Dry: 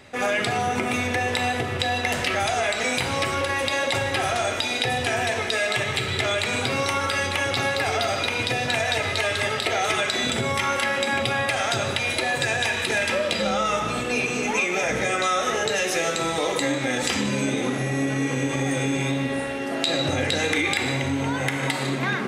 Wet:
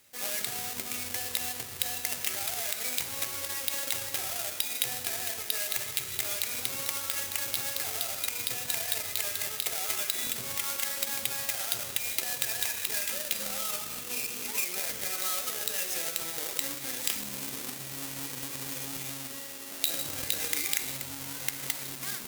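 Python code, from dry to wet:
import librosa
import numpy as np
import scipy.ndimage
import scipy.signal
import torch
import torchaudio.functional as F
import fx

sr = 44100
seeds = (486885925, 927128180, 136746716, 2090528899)

y = fx.halfwave_hold(x, sr)
y = fx.cheby_harmonics(y, sr, harmonics=(7,), levels_db=(-22,), full_scale_db=-2.5)
y = scipy.signal.lfilter([1.0, -0.9], [1.0], y)
y = F.gain(torch.from_numpy(y), -1.5).numpy()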